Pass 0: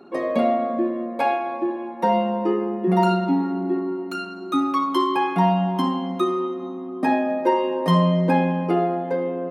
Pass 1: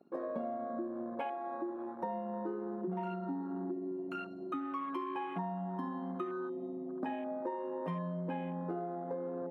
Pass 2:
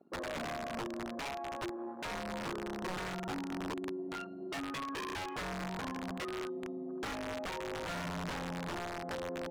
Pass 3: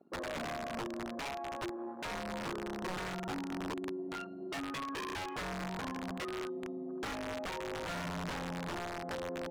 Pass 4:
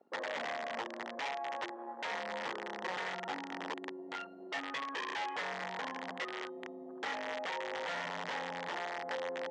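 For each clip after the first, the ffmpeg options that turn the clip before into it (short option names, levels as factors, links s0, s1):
-af "afwtdn=0.0316,acompressor=threshold=0.0447:ratio=6,volume=0.376"
-af "aeval=exprs='(mod(42.2*val(0)+1,2)-1)/42.2':c=same,adynamicsmooth=sensitivity=7:basefreq=3500"
-af anull
-af "highpass=310,equalizer=f=340:t=q:w=4:g=-5,equalizer=f=500:t=q:w=4:g=5,equalizer=f=850:t=q:w=4:g=7,equalizer=f=1900:t=q:w=4:g=9,equalizer=f=3200:t=q:w=4:g=5,lowpass=f=6900:w=0.5412,lowpass=f=6900:w=1.3066,volume=0.794"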